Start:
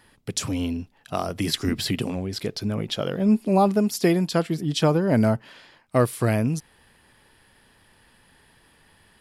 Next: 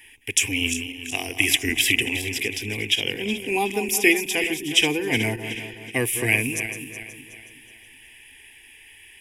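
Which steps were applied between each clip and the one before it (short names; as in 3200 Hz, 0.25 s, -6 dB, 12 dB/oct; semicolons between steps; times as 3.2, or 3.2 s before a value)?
regenerating reverse delay 0.185 s, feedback 62%, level -9.5 dB; resonant high shelf 1700 Hz +12 dB, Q 3; fixed phaser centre 880 Hz, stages 8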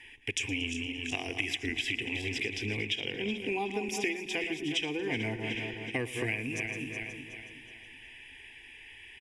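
air absorption 110 m; compressor 6:1, threshold -30 dBFS, peak gain reduction 16 dB; feedback echo 0.115 s, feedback 57%, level -18 dB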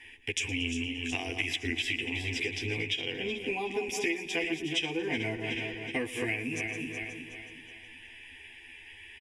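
doubler 12 ms -2.5 dB; gain -1 dB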